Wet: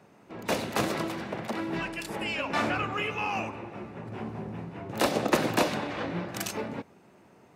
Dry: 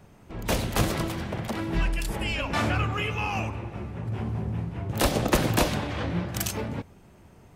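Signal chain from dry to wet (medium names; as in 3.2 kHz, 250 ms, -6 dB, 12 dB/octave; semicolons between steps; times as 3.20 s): high-pass 220 Hz 12 dB/octave; treble shelf 6.3 kHz -8.5 dB; band-stop 3.2 kHz, Q 17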